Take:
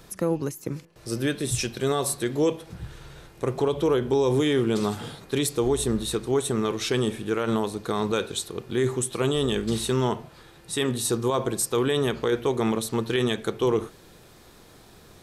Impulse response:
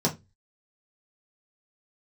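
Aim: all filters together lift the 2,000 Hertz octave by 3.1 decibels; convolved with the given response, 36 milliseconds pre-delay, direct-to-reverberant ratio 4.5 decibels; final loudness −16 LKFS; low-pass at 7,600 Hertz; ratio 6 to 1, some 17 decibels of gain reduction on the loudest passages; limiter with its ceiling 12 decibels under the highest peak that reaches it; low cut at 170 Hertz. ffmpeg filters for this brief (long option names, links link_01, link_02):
-filter_complex "[0:a]highpass=170,lowpass=7600,equalizer=frequency=2000:width_type=o:gain=4,acompressor=threshold=-38dB:ratio=6,alimiter=level_in=10dB:limit=-24dB:level=0:latency=1,volume=-10dB,asplit=2[link_01][link_02];[1:a]atrim=start_sample=2205,adelay=36[link_03];[link_02][link_03]afir=irnorm=-1:irlink=0,volume=-15.5dB[link_04];[link_01][link_04]amix=inputs=2:normalize=0,volume=24.5dB"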